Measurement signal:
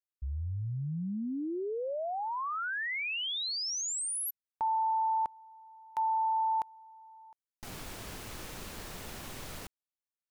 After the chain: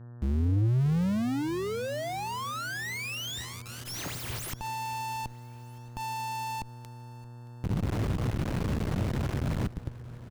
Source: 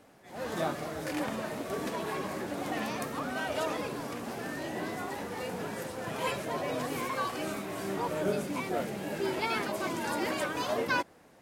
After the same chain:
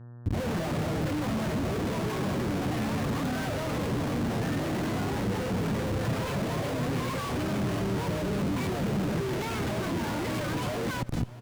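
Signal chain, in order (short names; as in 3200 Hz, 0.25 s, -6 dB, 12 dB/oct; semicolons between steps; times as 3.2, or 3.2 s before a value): tracing distortion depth 0.085 ms; notch 5100 Hz, Q 17; bands offset in time lows, highs 0.23 s, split 5300 Hz; Schmitt trigger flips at -43.5 dBFS; high shelf 9500 Hz -5 dB; reverse; upward compressor, threshold -43 dBFS; reverse; buzz 120 Hz, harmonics 15, -57 dBFS -5 dB/oct; bell 110 Hz +14.5 dB 2.4 oct; on a send: feedback echo 0.623 s, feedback 49%, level -20 dB; on the sum: core saturation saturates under 130 Hz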